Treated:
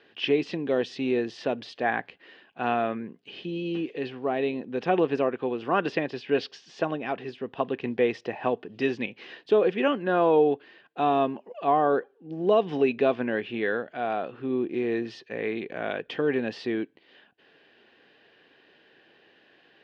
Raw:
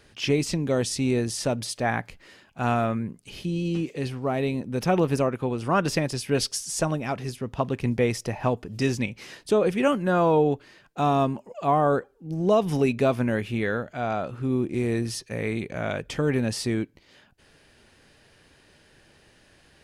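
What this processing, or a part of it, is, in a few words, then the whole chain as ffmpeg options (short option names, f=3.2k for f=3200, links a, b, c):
phone earpiece: -filter_complex "[0:a]asettb=1/sr,asplit=3[a][b][c];[a]atrim=end=5.924[d];[b]atrim=start=5.92:end=7.3,asetpts=PTS-STARTPTS,afade=t=in:d=0.004:c=qsin,afade=t=out:st=1.376:d=0.004:c=qsin,lowpass=5.9k[e];[c]atrim=start=7.296[f];[d][e]acrossfade=d=0.004:c1=hsin:c2=qsin[g];[g][f]acrossfade=d=0.004:c1=qsin:c2=hsin,highpass=400,equalizer=f=590:t=q:w=4:g=-7,equalizer=f=920:t=q:w=4:g=-7,equalizer=f=1.3k:t=q:w=4:g=-9,equalizer=f=2.2k:t=q:w=4:g=-8,lowpass=f=3.1k:w=0.5412,lowpass=f=3.1k:w=1.3066,volume=5dB"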